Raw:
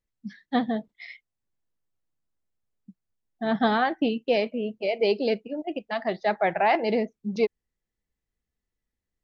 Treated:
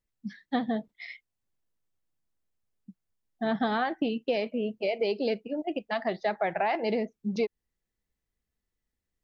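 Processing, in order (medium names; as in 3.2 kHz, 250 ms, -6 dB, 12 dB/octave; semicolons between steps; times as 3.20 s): compression, threshold -24 dBFS, peak gain reduction 7.5 dB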